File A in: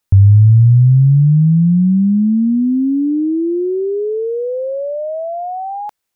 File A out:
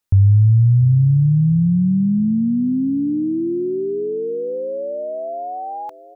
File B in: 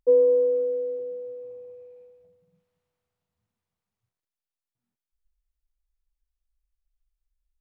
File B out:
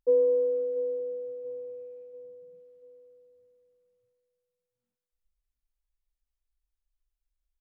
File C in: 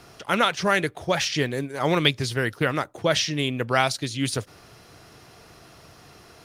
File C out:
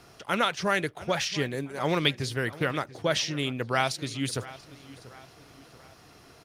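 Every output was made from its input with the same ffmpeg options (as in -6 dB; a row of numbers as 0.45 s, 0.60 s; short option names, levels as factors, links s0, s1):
-filter_complex "[0:a]asplit=2[s0][s1];[s1]adelay=687,lowpass=f=4600:p=1,volume=0.133,asplit=2[s2][s3];[s3]adelay=687,lowpass=f=4600:p=1,volume=0.47,asplit=2[s4][s5];[s5]adelay=687,lowpass=f=4600:p=1,volume=0.47,asplit=2[s6][s7];[s7]adelay=687,lowpass=f=4600:p=1,volume=0.47[s8];[s0][s2][s4][s6][s8]amix=inputs=5:normalize=0,volume=0.596"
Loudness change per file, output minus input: -4.5 LU, -6.0 LU, -4.5 LU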